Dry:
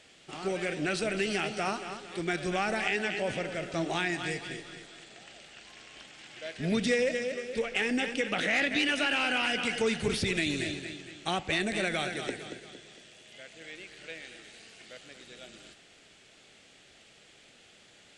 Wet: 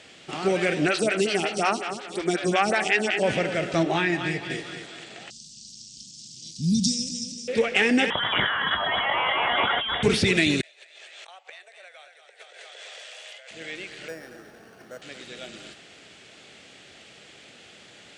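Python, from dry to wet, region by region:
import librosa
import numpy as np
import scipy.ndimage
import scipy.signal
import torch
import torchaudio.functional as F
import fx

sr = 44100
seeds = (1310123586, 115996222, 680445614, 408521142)

y = fx.chain(x, sr, fx.high_shelf(hz=3200.0, db=10.0),
    fx.stagger_phaser(hz=5.5), at=(0.88, 3.23))
y = fx.chain(y, sr, fx.lowpass(hz=3200.0, slope=6),
    fx.notch_comb(f0_hz=240.0), at=(3.83, 4.5))
y = fx.chain(y, sr, fx.ellip_bandstop(low_hz=210.0, high_hz=5500.0, order=3, stop_db=70),
    fx.peak_eq(hz=4700.0, db=11.5, octaves=1.8), at=(5.3, 7.48))
y = fx.chain(y, sr, fx.over_compress(threshold_db=-32.0, ratio=-1.0),
    fx.low_shelf(hz=430.0, db=-5.5),
    fx.freq_invert(carrier_hz=3600), at=(8.1, 10.03))
y = fx.chain(y, sr, fx.steep_highpass(hz=500.0, slope=48),
    fx.gate_flip(shuts_db=-28.0, range_db=-28),
    fx.over_compress(threshold_db=-54.0, ratio=-1.0), at=(10.61, 13.51))
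y = fx.chain(y, sr, fx.band_shelf(hz=2700.0, db=-14.0, octaves=1.1),
    fx.resample_bad(factor=6, down='filtered', up='hold'), at=(14.08, 15.02))
y = scipy.signal.sosfilt(scipy.signal.butter(2, 73.0, 'highpass', fs=sr, output='sos'), y)
y = fx.high_shelf(y, sr, hz=9500.0, db=-9.0)
y = y * librosa.db_to_amplitude(9.0)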